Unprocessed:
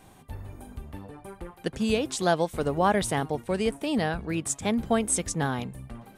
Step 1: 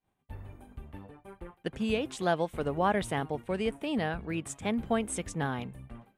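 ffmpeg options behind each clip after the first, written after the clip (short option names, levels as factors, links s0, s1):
-af "agate=range=0.0224:threshold=0.0112:ratio=3:detection=peak,highshelf=f=3700:t=q:w=1.5:g=-6,volume=0.596"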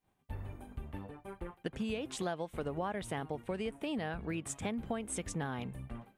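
-af "acompressor=threshold=0.0158:ratio=6,volume=1.26"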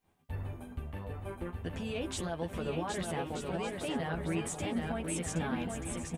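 -filter_complex "[0:a]alimiter=level_in=2.51:limit=0.0631:level=0:latency=1:release=25,volume=0.398,asplit=2[s0][s1];[s1]adelay=12,volume=0.631[s2];[s0][s2]amix=inputs=2:normalize=0,asplit=2[s3][s4];[s4]aecho=0:1:770|1232|1509|1676|1775:0.631|0.398|0.251|0.158|0.1[s5];[s3][s5]amix=inputs=2:normalize=0,volume=1.33"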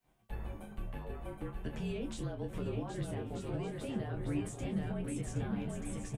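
-filter_complex "[0:a]acrossover=split=480[s0][s1];[s1]acompressor=threshold=0.00447:ratio=6[s2];[s0][s2]amix=inputs=2:normalize=0,asplit=2[s3][s4];[s4]adelay=27,volume=0.398[s5];[s3][s5]amix=inputs=2:normalize=0,afreqshift=-39,volume=0.891"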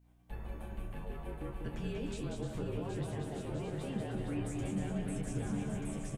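-filter_complex "[0:a]aeval=exprs='val(0)+0.000794*(sin(2*PI*60*n/s)+sin(2*PI*2*60*n/s)/2+sin(2*PI*3*60*n/s)/3+sin(2*PI*4*60*n/s)/4+sin(2*PI*5*60*n/s)/5)':c=same,asplit=2[s0][s1];[s1]aecho=0:1:190|304|372.4|413.4|438.1:0.631|0.398|0.251|0.158|0.1[s2];[s0][s2]amix=inputs=2:normalize=0,volume=0.794"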